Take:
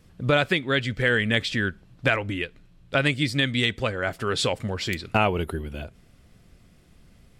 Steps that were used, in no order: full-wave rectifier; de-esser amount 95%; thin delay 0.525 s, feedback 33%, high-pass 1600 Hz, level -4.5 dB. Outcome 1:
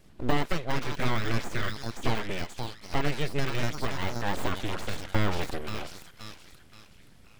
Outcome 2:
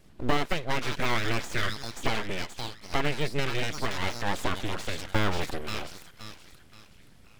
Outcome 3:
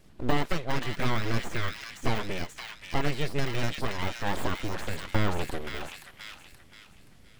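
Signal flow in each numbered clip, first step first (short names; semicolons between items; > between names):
thin delay > full-wave rectifier > de-esser; thin delay > de-esser > full-wave rectifier; full-wave rectifier > thin delay > de-esser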